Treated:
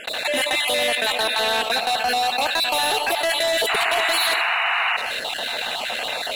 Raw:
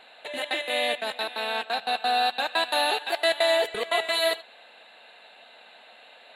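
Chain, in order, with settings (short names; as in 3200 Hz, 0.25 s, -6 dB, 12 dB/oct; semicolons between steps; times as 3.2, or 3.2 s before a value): random spectral dropouts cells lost 23%; gate with hold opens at -44 dBFS; high shelf 6600 Hz +10 dB; limiter -18.5 dBFS, peak gain reduction 7 dB; sample leveller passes 2; painted sound noise, 3.69–4.97, 660–3000 Hz -26 dBFS; on a send at -21 dB: reverb RT60 0.45 s, pre-delay 65 ms; on the sum: fast leveller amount 70%; gain +1 dB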